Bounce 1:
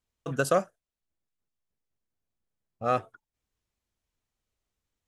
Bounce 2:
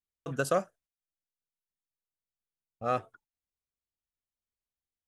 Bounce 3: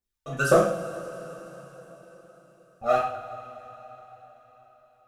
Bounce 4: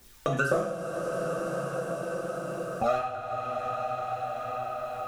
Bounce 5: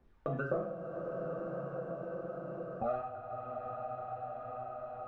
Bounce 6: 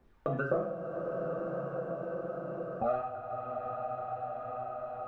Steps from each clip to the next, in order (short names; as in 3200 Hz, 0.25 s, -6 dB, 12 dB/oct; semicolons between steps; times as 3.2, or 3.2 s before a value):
gate -57 dBFS, range -12 dB; gain -3.5 dB
phaser 1.9 Hz, delay 1.6 ms, feedback 76%; two-slope reverb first 0.51 s, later 4.7 s, from -19 dB, DRR -6.5 dB; gain -4 dB
three-band squash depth 100%; gain +3 dB
Bessel low-pass 930 Hz, order 2; gain -6.5 dB
low shelf 160 Hz -3.5 dB; gain +4 dB